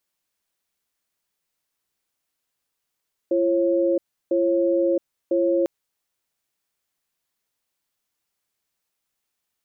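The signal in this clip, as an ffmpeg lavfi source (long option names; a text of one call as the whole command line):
ffmpeg -f lavfi -i "aevalsrc='0.1*(sin(2*PI*341*t)+sin(2*PI*543*t))*clip(min(mod(t,1),0.67-mod(t,1))/0.005,0,1)':duration=2.35:sample_rate=44100" out.wav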